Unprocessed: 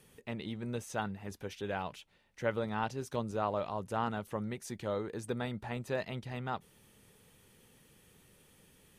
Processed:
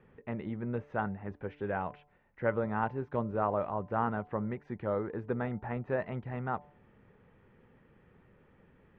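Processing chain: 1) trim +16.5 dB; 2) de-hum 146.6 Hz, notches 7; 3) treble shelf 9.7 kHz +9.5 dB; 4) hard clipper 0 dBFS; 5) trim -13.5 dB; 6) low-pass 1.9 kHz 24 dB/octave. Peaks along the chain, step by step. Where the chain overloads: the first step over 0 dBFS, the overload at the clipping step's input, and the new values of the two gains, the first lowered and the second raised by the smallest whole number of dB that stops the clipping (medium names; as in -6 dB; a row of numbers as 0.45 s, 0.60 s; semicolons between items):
-2.0 dBFS, -2.0 dBFS, -2.0 dBFS, -2.0 dBFS, -15.5 dBFS, -17.0 dBFS; nothing clips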